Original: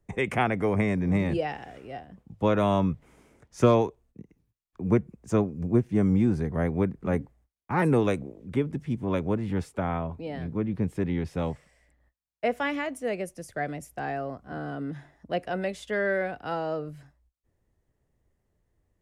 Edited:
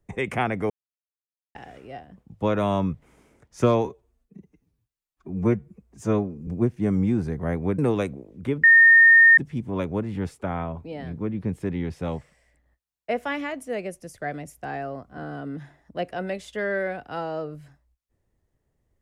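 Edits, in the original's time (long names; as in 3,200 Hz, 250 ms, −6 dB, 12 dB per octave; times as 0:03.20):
0:00.70–0:01.55: silence
0:03.85–0:05.60: time-stretch 1.5×
0:06.91–0:07.87: remove
0:08.72: insert tone 1,830 Hz −9.5 dBFS 0.74 s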